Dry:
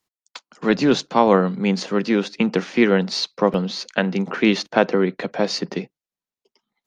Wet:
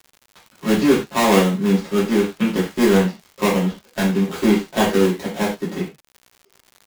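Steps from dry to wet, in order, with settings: dead-time distortion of 0.24 ms; gated-style reverb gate 130 ms falling, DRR -8 dB; crackle 130 per s -27 dBFS; trim -7 dB

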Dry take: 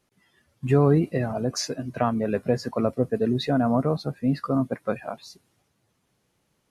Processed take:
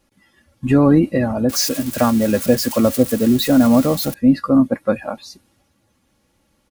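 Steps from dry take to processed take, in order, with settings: 1.49–4.14 s: zero-crossing glitches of -23 dBFS; bass shelf 180 Hz +6.5 dB; comb 3.6 ms, depth 61%; trim +5.5 dB

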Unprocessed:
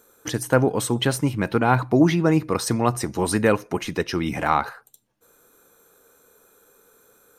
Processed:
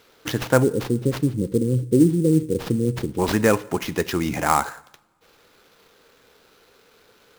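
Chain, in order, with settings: spectral selection erased 0.63–3.19 s, 550–8600 Hz; two-slope reverb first 0.78 s, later 3.1 s, from -27 dB, DRR 17 dB; sample-rate reducer 8.8 kHz, jitter 20%; trim +1 dB

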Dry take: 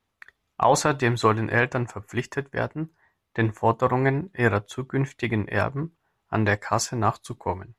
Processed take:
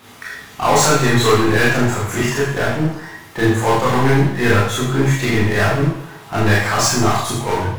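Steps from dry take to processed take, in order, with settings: high-pass 110 Hz 12 dB/octave; power-law waveshaper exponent 0.5; reverberation RT60 0.65 s, pre-delay 21 ms, DRR -6.5 dB; trim -6 dB

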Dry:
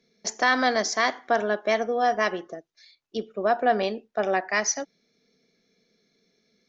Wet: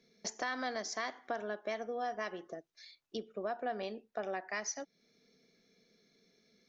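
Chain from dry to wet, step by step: compression 2.5:1, threshold -40 dBFS, peak gain reduction 15.5 dB; trim -1.5 dB

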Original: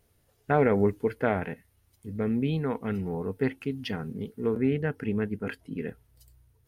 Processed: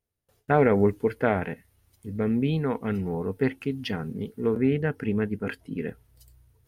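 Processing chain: gate with hold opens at -57 dBFS; trim +2.5 dB

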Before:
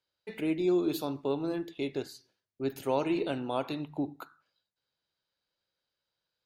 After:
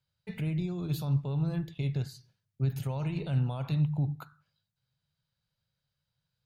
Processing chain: peak limiter -26.5 dBFS, peak gain reduction 10.5 dB; resonant low shelf 210 Hz +13.5 dB, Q 3; trim -1.5 dB

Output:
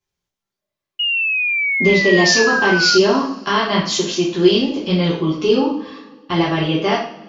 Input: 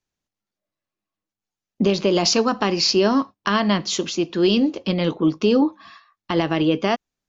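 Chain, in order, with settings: two-slope reverb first 0.48 s, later 1.9 s, from -21 dB, DRR -6.5 dB; painted sound fall, 0.99–2.98 s, 1.4–2.9 kHz -15 dBFS; trim -3.5 dB

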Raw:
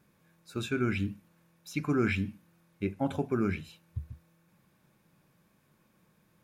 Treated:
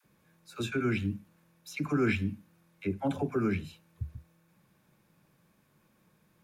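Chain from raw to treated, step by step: phase dispersion lows, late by 48 ms, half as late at 540 Hz

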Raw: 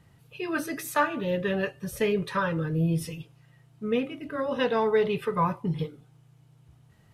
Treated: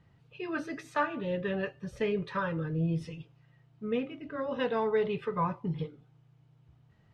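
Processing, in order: distance through air 130 m; trim -4.5 dB

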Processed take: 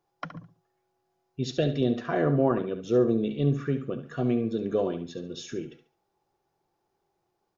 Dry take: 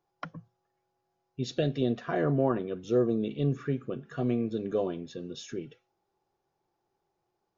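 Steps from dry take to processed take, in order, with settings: feedback delay 70 ms, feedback 28%, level -11 dB; trim +2.5 dB

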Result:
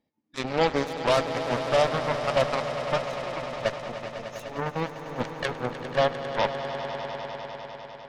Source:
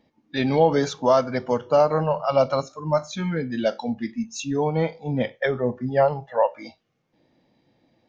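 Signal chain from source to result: Chebyshev shaper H 3 -13 dB, 5 -10 dB, 6 -22 dB, 7 -10 dB, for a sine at -7 dBFS; echo with a slow build-up 100 ms, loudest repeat 5, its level -13 dB; trim -4 dB

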